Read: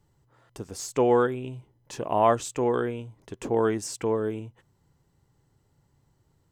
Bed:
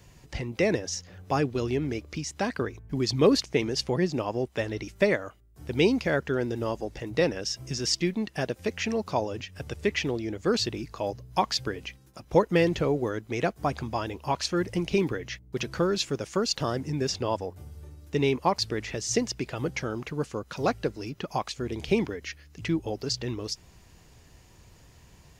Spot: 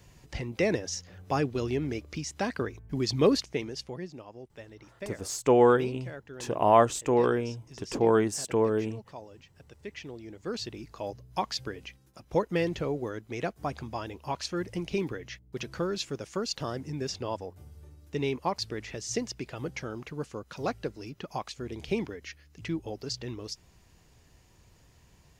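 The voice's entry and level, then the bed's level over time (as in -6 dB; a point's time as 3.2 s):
4.50 s, +1.0 dB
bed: 3.27 s -2 dB
4.26 s -17 dB
9.66 s -17 dB
11.02 s -5.5 dB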